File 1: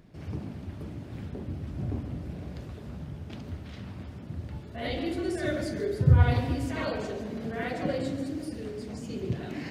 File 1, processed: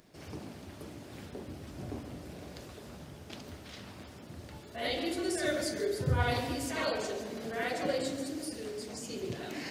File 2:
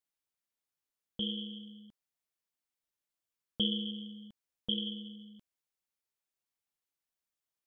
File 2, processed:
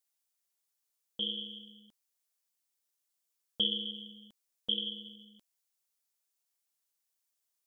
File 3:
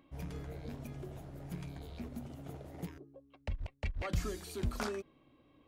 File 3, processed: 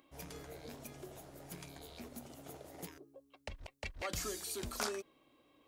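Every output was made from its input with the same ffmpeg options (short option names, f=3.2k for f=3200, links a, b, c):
-af "bass=f=250:g=-12,treble=f=4k:g=9"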